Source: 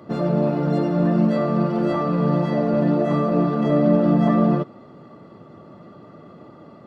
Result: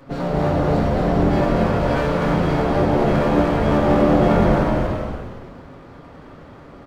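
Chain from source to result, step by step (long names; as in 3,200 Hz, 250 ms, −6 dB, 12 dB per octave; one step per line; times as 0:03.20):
lower of the sound and its delayed copy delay 7.3 ms
echo with shifted repeats 236 ms, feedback 43%, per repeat −82 Hz, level −3.5 dB
reverb whose tail is shaped and stops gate 450 ms flat, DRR 1.5 dB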